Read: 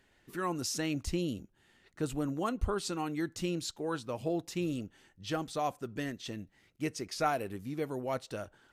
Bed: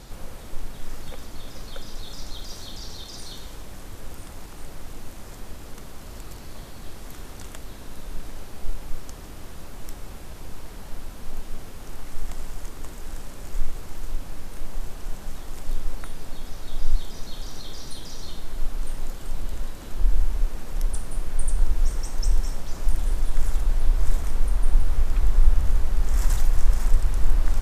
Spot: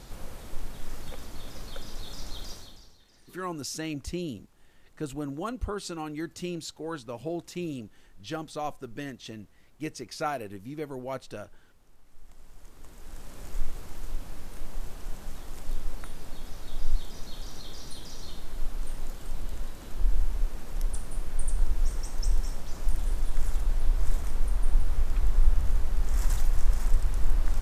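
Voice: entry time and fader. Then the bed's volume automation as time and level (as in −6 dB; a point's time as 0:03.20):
3.00 s, −0.5 dB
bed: 0:02.49 −3 dB
0:03.01 −23.5 dB
0:12.03 −23.5 dB
0:13.39 −4.5 dB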